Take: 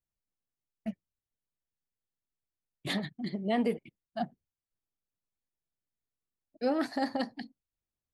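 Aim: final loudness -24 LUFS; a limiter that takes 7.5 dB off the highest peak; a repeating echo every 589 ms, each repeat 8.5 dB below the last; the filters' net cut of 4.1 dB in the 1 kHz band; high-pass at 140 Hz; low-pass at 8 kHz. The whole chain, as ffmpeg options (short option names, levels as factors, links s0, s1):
-af "highpass=140,lowpass=8000,equalizer=f=1000:t=o:g=-6.5,alimiter=level_in=1.26:limit=0.0631:level=0:latency=1,volume=0.794,aecho=1:1:589|1178|1767|2356:0.376|0.143|0.0543|0.0206,volume=5.62"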